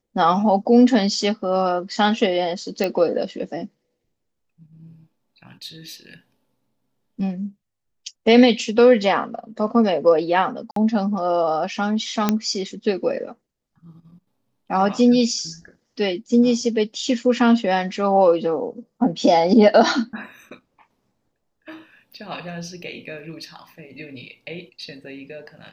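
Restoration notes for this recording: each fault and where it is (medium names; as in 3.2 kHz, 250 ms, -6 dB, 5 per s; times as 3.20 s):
2.84 s: pop -9 dBFS
10.71–10.76 s: dropout 53 ms
12.29 s: pop -4 dBFS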